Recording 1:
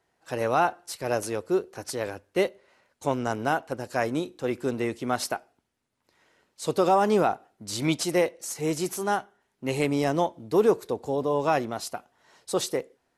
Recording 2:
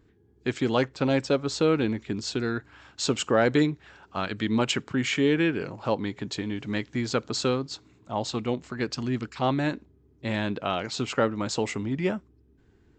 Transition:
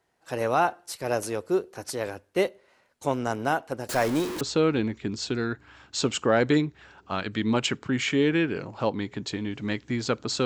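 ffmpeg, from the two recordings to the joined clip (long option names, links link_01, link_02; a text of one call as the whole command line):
ffmpeg -i cue0.wav -i cue1.wav -filter_complex "[0:a]asettb=1/sr,asplit=3[link_01][link_02][link_03];[link_01]atrim=end=3.894[link_04];[link_02]atrim=start=3.89:end=4.41,asetpts=PTS-STARTPTS,afade=type=in:duration=0.004:curve=qsin,afade=type=out:start_time=0.516:duration=0.004:curve=qsin,aeval=exprs='val(0)+0.5*0.0422*sgn(val(0))':channel_layout=same[link_05];[link_03]atrim=start=4.406[link_06];[link_04][link_05]acrossfade=duration=0.004:curve1=hsin:curve2=qsin[link_07];[link_07][link_06]acrossfade=duration=0.004:curve1=qsin:curve2=hsin,apad=whole_dur=10.45,atrim=end=10.45,atrim=end=4.412[link_08];[1:a]atrim=start=1.458:end=7.5[link_09];[link_08][link_09]acrossfade=duration=0.004:curve1=hsin:curve2=hsin" out.wav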